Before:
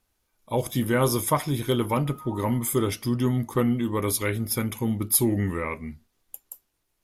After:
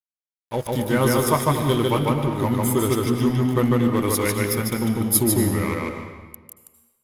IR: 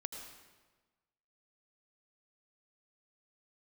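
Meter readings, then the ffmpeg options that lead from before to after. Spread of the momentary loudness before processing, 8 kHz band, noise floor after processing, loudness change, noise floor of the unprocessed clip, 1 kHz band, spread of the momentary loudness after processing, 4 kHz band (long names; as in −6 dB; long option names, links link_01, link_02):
10 LU, +3.0 dB, below −85 dBFS, +4.0 dB, −75 dBFS, +5.0 dB, 8 LU, +4.5 dB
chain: -filter_complex "[0:a]dynaudnorm=framelen=130:gausssize=13:maxgain=3dB,aeval=exprs='sgn(val(0))*max(abs(val(0))-0.0158,0)':channel_layout=same,asplit=2[link_01][link_02];[1:a]atrim=start_sample=2205,highshelf=frequency=9200:gain=-6.5,adelay=149[link_03];[link_02][link_03]afir=irnorm=-1:irlink=0,volume=2dB[link_04];[link_01][link_04]amix=inputs=2:normalize=0"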